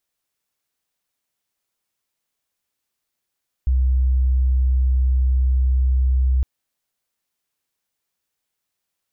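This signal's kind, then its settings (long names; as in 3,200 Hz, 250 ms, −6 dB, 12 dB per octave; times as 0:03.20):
tone sine 64.3 Hz −14 dBFS 2.76 s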